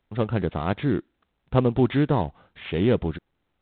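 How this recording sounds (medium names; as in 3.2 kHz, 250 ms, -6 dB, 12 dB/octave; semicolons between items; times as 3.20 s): a buzz of ramps at a fixed pitch in blocks of 8 samples; µ-law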